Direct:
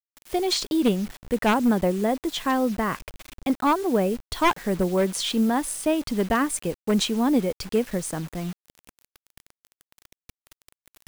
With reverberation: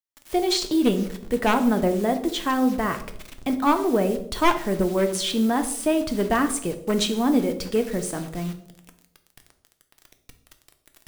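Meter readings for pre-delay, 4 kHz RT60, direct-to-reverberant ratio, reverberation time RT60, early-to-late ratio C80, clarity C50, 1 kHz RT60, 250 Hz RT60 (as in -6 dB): 3 ms, 0.50 s, 6.5 dB, 0.70 s, 15.0 dB, 11.5 dB, 0.55 s, 0.80 s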